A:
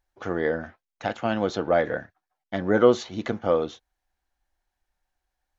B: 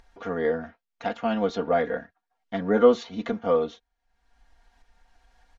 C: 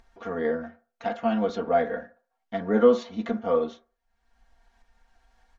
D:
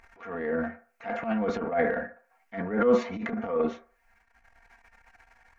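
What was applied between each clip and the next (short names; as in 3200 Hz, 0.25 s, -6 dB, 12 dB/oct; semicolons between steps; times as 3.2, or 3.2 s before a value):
Bessel low-pass 5000 Hz, order 2; comb 4.3 ms, depth 87%; upward compressor, threshold -37 dBFS; gain -3.5 dB
reverb RT60 0.40 s, pre-delay 4 ms, DRR 6 dB; gain -3 dB
resonant high shelf 2800 Hz -6.5 dB, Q 3; transient shaper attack -10 dB, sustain +10 dB; mismatched tape noise reduction encoder only; gain -3 dB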